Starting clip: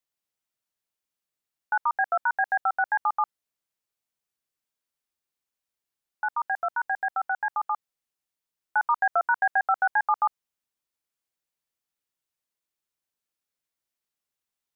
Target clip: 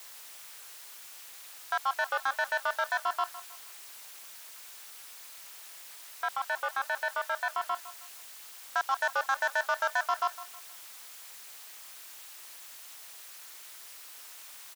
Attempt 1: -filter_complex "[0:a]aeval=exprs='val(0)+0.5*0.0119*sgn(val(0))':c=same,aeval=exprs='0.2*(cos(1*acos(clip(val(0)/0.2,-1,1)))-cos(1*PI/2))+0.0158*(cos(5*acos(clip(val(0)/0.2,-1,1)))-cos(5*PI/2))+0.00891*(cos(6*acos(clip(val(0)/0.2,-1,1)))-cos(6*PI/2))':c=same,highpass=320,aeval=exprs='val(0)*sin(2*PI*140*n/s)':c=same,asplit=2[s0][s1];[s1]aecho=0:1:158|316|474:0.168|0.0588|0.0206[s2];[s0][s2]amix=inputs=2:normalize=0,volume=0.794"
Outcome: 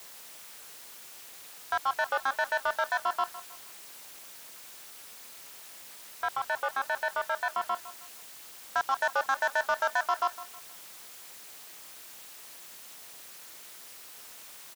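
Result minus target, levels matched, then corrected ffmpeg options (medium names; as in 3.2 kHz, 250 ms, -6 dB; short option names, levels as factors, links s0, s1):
250 Hz band +4.5 dB
-filter_complex "[0:a]aeval=exprs='val(0)+0.5*0.0119*sgn(val(0))':c=same,aeval=exprs='0.2*(cos(1*acos(clip(val(0)/0.2,-1,1)))-cos(1*PI/2))+0.0158*(cos(5*acos(clip(val(0)/0.2,-1,1)))-cos(5*PI/2))+0.00891*(cos(6*acos(clip(val(0)/0.2,-1,1)))-cos(6*PI/2))':c=same,highpass=750,aeval=exprs='val(0)*sin(2*PI*140*n/s)':c=same,asplit=2[s0][s1];[s1]aecho=0:1:158|316|474:0.168|0.0588|0.0206[s2];[s0][s2]amix=inputs=2:normalize=0,volume=0.794"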